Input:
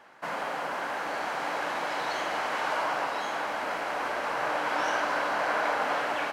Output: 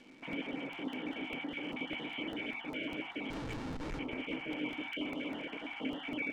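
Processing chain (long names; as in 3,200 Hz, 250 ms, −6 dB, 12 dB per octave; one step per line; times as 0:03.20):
time-frequency cells dropped at random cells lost 20%
high-shelf EQ 2,500 Hz +4.5 dB
brickwall limiter −27 dBFS, peak gain reduction 11 dB
formant resonators in series i
0:03.30–0:03.99: comparator with hysteresis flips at −53.5 dBFS
surface crackle 310 per second −62 dBFS
high-frequency loss of the air 91 metres
convolution reverb RT60 0.40 s, pre-delay 4 ms, DRR 11 dB
regular buffer underruns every 0.20 s, samples 64, repeat, from 0:00.33
level +15 dB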